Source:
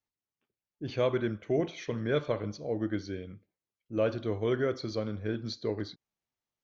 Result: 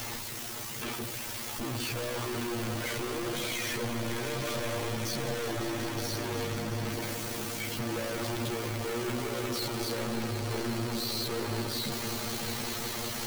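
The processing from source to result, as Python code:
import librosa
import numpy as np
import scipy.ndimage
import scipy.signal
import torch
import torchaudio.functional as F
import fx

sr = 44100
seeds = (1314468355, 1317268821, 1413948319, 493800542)

y = np.sign(x) * np.sqrt(np.mean(np.square(x)))
y = fx.echo_swell(y, sr, ms=92, loudest=5, wet_db=-13)
y = fx.stretch_grains(y, sr, factor=2.0, grain_ms=34.0)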